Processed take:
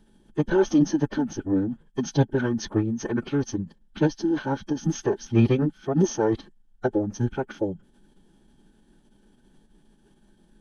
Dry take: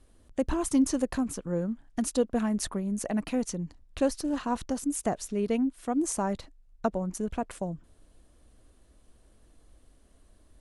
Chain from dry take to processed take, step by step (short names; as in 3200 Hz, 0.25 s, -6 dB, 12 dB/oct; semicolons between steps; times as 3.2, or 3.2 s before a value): small resonant body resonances 380/1500/3200 Hz, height 17 dB, ringing for 40 ms; formant-preserving pitch shift -10 st